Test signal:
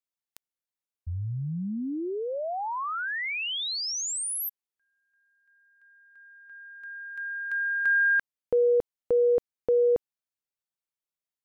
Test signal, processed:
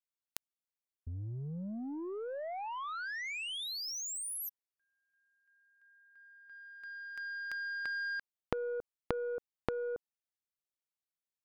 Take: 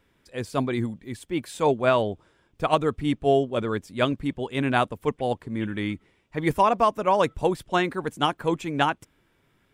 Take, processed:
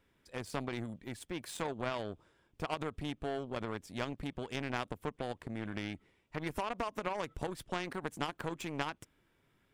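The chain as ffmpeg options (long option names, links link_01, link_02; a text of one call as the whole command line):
ffmpeg -i in.wav -af "acompressor=threshold=-37dB:ratio=6:attack=3.1:release=76:knee=6:detection=peak,aeval=exprs='0.112*(cos(1*acos(clip(val(0)/0.112,-1,1)))-cos(1*PI/2))+0.000708*(cos(4*acos(clip(val(0)/0.112,-1,1)))-cos(4*PI/2))+0.00355*(cos(5*acos(clip(val(0)/0.112,-1,1)))-cos(5*PI/2))+0.000708*(cos(6*acos(clip(val(0)/0.112,-1,1)))-cos(6*PI/2))+0.0158*(cos(7*acos(clip(val(0)/0.112,-1,1)))-cos(7*PI/2))':channel_layout=same,volume=8.5dB" out.wav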